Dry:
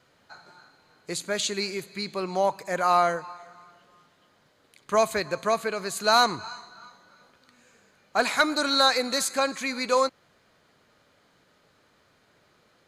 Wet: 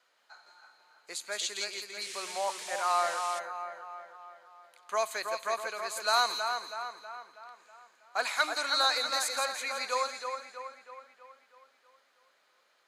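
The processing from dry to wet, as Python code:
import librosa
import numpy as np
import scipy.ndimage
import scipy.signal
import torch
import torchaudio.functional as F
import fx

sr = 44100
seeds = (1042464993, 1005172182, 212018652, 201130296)

y = scipy.signal.sosfilt(scipy.signal.butter(2, 710.0, 'highpass', fs=sr, output='sos'), x)
y = fx.echo_split(y, sr, split_hz=2600.0, low_ms=322, high_ms=168, feedback_pct=52, wet_db=-6.0)
y = fx.dmg_noise_band(y, sr, seeds[0], low_hz=1700.0, high_hz=9500.0, level_db=-38.0, at=(2.0, 3.38), fade=0.02)
y = y * librosa.db_to_amplitude(-5.5)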